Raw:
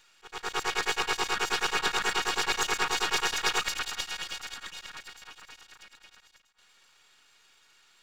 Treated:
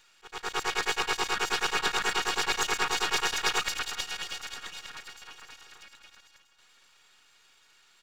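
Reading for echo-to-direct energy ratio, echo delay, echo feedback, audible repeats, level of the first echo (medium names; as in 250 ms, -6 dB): -22.5 dB, 1100 ms, 37%, 2, -23.0 dB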